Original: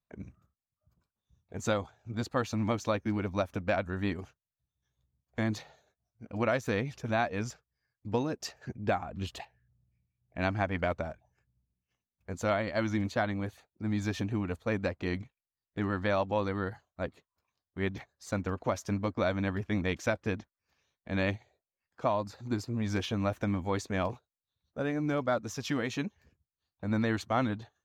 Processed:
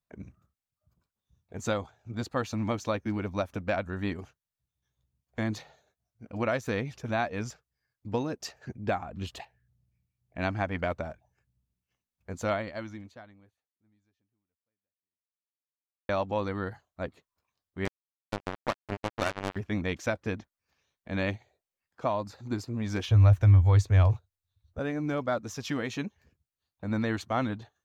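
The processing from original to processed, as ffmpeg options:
-filter_complex "[0:a]asettb=1/sr,asplit=3[a][b][c];[a]atrim=end=17.854[d];[b]atrim=start=17.85:end=19.56,asetpts=PTS-STARTPTS,afade=t=in:d=0.004:c=qsin,afade=t=out:st=1.706:d=0.004:c=qsin,acrusher=bits=3:mix=0:aa=0.5[e];[c]atrim=start=19.556[f];[d][e]acrossfade=d=0.004:c1=hsin:c2=qsin[g];[g][f]acrossfade=d=0.004:c1=qsin:c2=hsin,asettb=1/sr,asplit=3[h][i][j];[h]atrim=end=23.074[k];[i]atrim=start=23.07:end=24.79,asetpts=PTS-STARTPTS,afade=t=in:d=0.004:c=qsin,afade=t=out:st=1.716:d=0.004:c=qsin,lowshelf=f=140:t=q:w=3:g=12[l];[j]atrim=start=24.786[m];[k][l]acrossfade=d=0.004:c1=hsin:c2=qsin[n];[n][m]acrossfade=d=0.004:c1=qsin:c2=hsin,asplit=2[o][p];[o]atrim=end=16.09,asetpts=PTS-STARTPTS,afade=t=out:st=12.53:d=3.56:c=exp[q];[p]atrim=start=16.09,asetpts=PTS-STARTPTS,afade=t=in:d=0.004:c=hsin[r];[q][r]concat=n=2:v=0:a=1"

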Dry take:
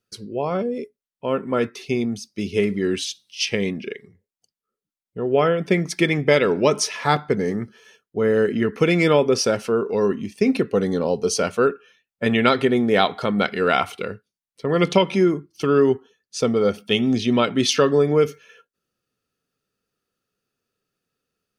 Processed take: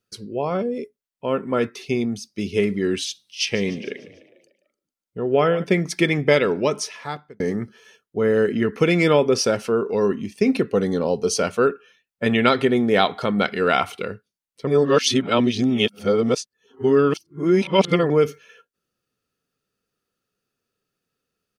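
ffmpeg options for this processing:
-filter_complex "[0:a]asplit=3[a][b][c];[a]afade=t=out:st=3.53:d=0.02[d];[b]asplit=6[e][f][g][h][i][j];[f]adelay=148,afreqshift=32,volume=-17dB[k];[g]adelay=296,afreqshift=64,volume=-22.5dB[l];[h]adelay=444,afreqshift=96,volume=-28dB[m];[i]adelay=592,afreqshift=128,volume=-33.5dB[n];[j]adelay=740,afreqshift=160,volume=-39.1dB[o];[e][k][l][m][n][o]amix=inputs=6:normalize=0,afade=t=in:st=3.53:d=0.02,afade=t=out:st=5.63:d=0.02[p];[c]afade=t=in:st=5.63:d=0.02[q];[d][p][q]amix=inputs=3:normalize=0,asplit=4[r][s][t][u];[r]atrim=end=7.4,asetpts=PTS-STARTPTS,afade=t=out:st=6.32:d=1.08[v];[s]atrim=start=7.4:end=14.672,asetpts=PTS-STARTPTS,afade=t=in:d=0.004:c=hsin[w];[t]atrim=start=14.668:end=18.102,asetpts=PTS-STARTPTS,areverse[x];[u]atrim=start=18.098[y];[v][w]concat=n=2:v=0:a=1[z];[z][x]acrossfade=d=0.004:c1=hsin:c2=hsin[aa];[aa][y]acrossfade=d=0.004:c1=hsin:c2=hsin"

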